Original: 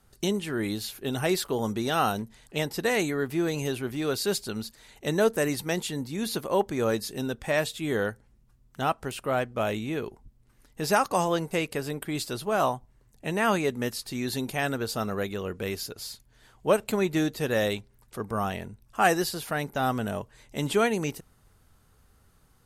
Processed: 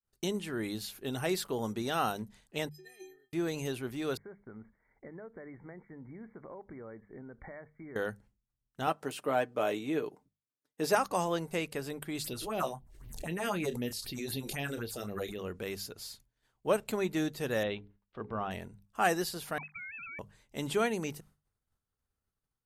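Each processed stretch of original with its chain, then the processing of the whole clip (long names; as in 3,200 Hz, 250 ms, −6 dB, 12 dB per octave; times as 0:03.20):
0:02.69–0:03.33: Butterworth band-reject 1,100 Hz, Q 1.5 + stiff-string resonator 370 Hz, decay 0.63 s, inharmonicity 0.03
0:04.17–0:07.96: downward compressor 16 to 1, threshold −36 dBFS + linear-phase brick-wall low-pass 2,300 Hz
0:08.87–0:10.95: high-pass filter 280 Hz + low-shelf EQ 490 Hz +7.5 dB + comb filter 6.7 ms, depth 47%
0:12.24–0:15.39: all-pass phaser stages 4, 3.9 Hz, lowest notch 140–1,500 Hz + double-tracking delay 29 ms −13 dB + background raised ahead of every attack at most 48 dB per second
0:17.63–0:18.51: Chebyshev low-pass filter 3,300 Hz, order 3 + mains-hum notches 60/120/180/240/300/360/420/480 Hz
0:19.58–0:20.19: three sine waves on the formant tracks + downward compressor, threshold −36 dBFS + voice inversion scrambler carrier 2,900 Hz
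whole clip: downward expander −47 dBFS; mains-hum notches 50/100/150/200 Hz; level −6 dB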